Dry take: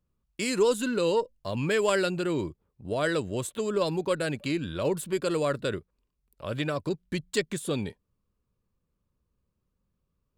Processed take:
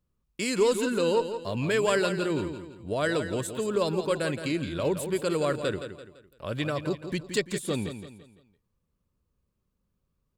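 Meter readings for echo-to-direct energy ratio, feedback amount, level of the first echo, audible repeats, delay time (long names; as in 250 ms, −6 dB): −9.0 dB, 39%, −9.5 dB, 4, 169 ms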